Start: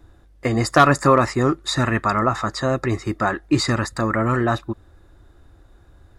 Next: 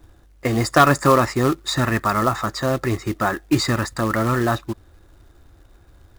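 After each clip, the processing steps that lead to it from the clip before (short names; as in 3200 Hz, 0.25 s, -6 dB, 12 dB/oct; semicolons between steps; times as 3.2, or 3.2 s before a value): short-mantissa float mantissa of 2-bit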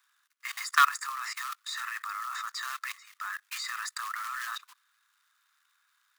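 steep high-pass 1100 Hz 48 dB/oct; level quantiser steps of 18 dB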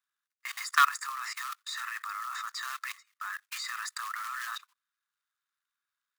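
gate -46 dBFS, range -17 dB; gain -1 dB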